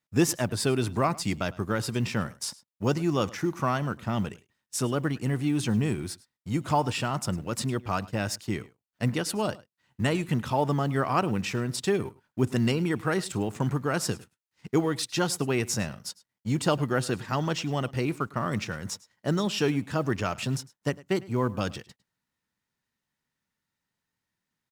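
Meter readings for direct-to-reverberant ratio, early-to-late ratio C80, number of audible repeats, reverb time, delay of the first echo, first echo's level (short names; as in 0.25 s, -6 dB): none, none, 1, none, 0.104 s, -21.0 dB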